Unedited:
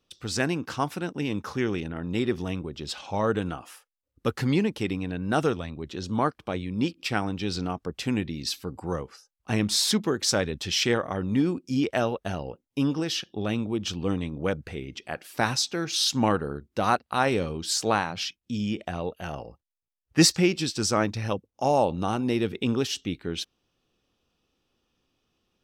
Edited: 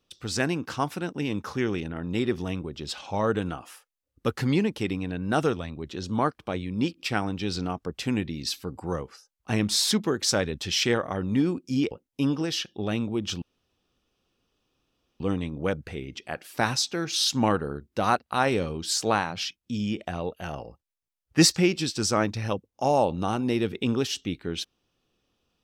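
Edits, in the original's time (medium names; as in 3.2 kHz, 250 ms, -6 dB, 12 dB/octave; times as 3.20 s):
11.91–12.49 s: delete
14.00 s: insert room tone 1.78 s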